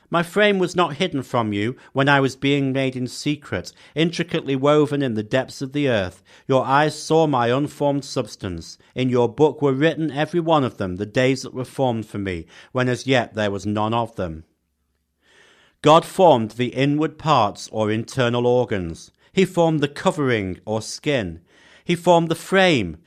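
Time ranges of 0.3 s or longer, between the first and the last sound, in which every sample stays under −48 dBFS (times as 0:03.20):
0:14.44–0:15.28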